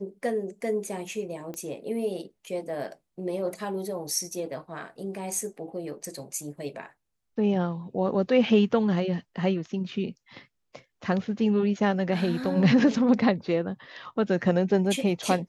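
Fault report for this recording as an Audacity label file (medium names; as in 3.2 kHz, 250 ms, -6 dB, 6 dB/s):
1.540000	1.540000	pop -24 dBFS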